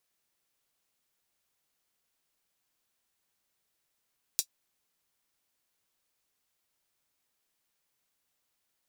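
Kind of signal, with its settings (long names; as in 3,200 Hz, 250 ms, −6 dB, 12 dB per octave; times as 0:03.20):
closed synth hi-hat, high-pass 4,900 Hz, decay 0.08 s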